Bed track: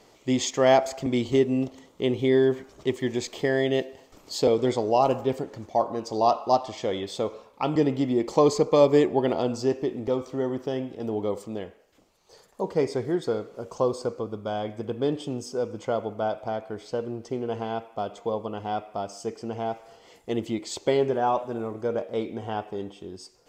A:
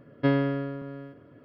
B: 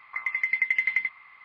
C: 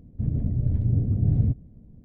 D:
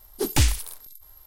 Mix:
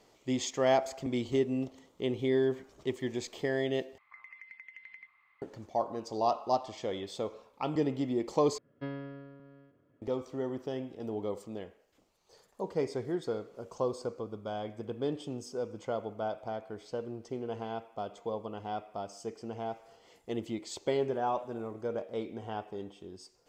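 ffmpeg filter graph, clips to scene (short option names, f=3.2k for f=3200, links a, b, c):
-filter_complex "[0:a]volume=-7.5dB[a];[2:a]acompressor=threshold=-30dB:ratio=6:attack=3.2:release=140:knee=1:detection=peak[b];[a]asplit=3[c][d][e];[c]atrim=end=3.984[f];[b]atrim=end=1.44,asetpts=PTS-STARTPTS,volume=-16dB[g];[d]atrim=start=5.416:end=8.584[h];[1:a]atrim=end=1.44,asetpts=PTS-STARTPTS,volume=-16dB[i];[e]atrim=start=10.016[j];[f][g]acrossfade=d=0.004:c1=hsin:c2=hsin[k];[k][h]acrossfade=d=0.004:c1=hsin:c2=hsin[l];[l][i]acrossfade=d=0.004:c1=hsin:c2=hsin[m];[m][j]acrossfade=d=0.004:c1=hsin:c2=hsin"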